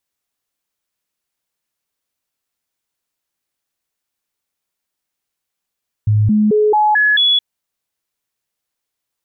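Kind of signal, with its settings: stepped sine 106 Hz up, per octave 1, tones 6, 0.22 s, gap 0.00 s -9.5 dBFS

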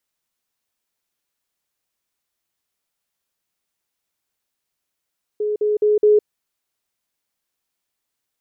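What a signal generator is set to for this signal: level ladder 421 Hz -18.5 dBFS, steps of 3 dB, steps 4, 0.16 s 0.05 s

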